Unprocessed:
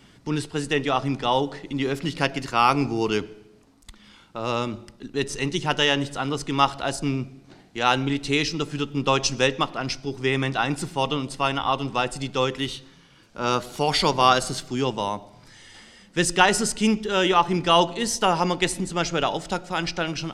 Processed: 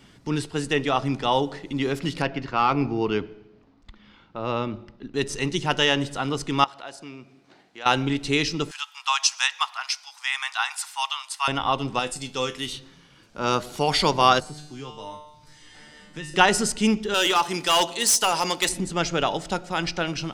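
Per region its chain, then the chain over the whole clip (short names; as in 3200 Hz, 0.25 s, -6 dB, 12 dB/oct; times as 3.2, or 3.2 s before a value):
2.22–5.14 overloaded stage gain 11.5 dB + air absorption 220 m
6.64–7.86 HPF 640 Hz 6 dB/oct + high shelf 5800 Hz -10 dB + compressor 1.5:1, threshold -48 dBFS
8.71–11.48 steep high-pass 850 Hz 48 dB/oct + high shelf 6200 Hz +8.5 dB
11.99–12.73 high shelf 4300 Hz +11.5 dB + resonator 84 Hz, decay 0.22 s, mix 70%
14.4–16.34 low shelf 120 Hz +7.5 dB + resonator 150 Hz, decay 0.57 s, mix 90% + three-band squash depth 70%
17.14–18.69 RIAA curve recording + hard clip -14.5 dBFS
whole clip: dry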